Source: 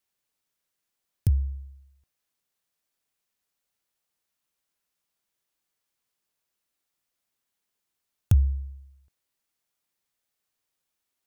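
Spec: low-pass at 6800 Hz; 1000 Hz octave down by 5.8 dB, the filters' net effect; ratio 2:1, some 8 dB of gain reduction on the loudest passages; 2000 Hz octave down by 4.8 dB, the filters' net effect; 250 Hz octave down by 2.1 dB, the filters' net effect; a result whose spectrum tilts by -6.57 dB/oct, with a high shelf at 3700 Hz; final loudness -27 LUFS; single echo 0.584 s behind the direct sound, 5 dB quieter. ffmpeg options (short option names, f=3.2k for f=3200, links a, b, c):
-af "lowpass=6.8k,equalizer=f=250:t=o:g=-4.5,equalizer=f=1k:t=o:g=-7,equalizer=f=2k:t=o:g=-7.5,highshelf=f=3.7k:g=8.5,acompressor=threshold=-30dB:ratio=2,aecho=1:1:584:0.562,volume=8.5dB"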